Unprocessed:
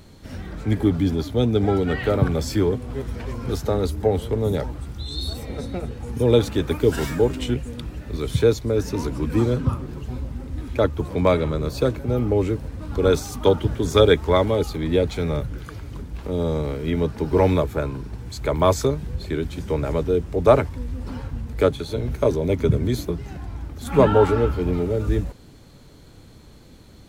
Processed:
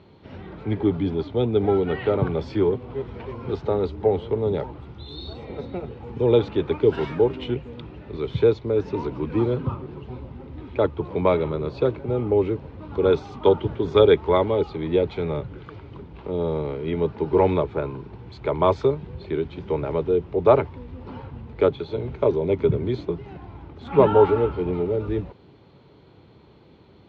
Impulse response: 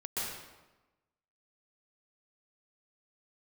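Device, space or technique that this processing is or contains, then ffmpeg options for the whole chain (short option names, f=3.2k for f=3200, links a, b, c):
guitar cabinet: -af "highpass=99,equalizer=f=250:t=q:w=4:g=-4,equalizer=f=390:t=q:w=4:g=6,equalizer=f=910:t=q:w=4:g=5,equalizer=f=1.7k:t=q:w=4:g=-5,lowpass=f=3.5k:w=0.5412,lowpass=f=3.5k:w=1.3066,volume=-2.5dB"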